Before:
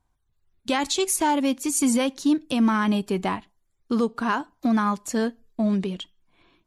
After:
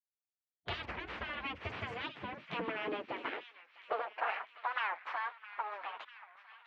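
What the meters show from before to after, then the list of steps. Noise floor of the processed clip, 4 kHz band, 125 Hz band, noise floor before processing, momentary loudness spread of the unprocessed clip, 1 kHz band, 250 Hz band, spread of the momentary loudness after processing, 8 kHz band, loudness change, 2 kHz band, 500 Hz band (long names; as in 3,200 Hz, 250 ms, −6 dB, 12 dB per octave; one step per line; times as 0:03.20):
below −85 dBFS, −13.5 dB, −17.0 dB, −72 dBFS, 8 LU, −11.0 dB, −28.0 dB, 12 LU, below −40 dB, −15.5 dB, −6.5 dB, −15.0 dB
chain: lower of the sound and its delayed copy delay 9.2 ms
slack as between gear wheels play −42 dBFS
downward compressor 4 to 1, threshold −40 dBFS, peak gain reduction 18.5 dB
gate on every frequency bin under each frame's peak −15 dB weak
low-pass filter 2,600 Hz 24 dB per octave
high-pass filter sweep 63 Hz → 1,000 Hz, 0:01.36–0:04.61
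on a send: delay with a high-pass on its return 652 ms, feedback 61%, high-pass 1,700 Hz, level −11.5 dB
on the sum: wow of a warped record 45 rpm, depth 250 cents
level +11.5 dB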